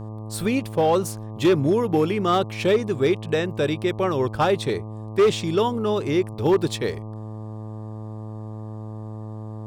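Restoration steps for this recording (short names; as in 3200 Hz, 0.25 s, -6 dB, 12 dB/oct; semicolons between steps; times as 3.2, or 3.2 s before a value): clip repair -12.5 dBFS; de-hum 108.4 Hz, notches 11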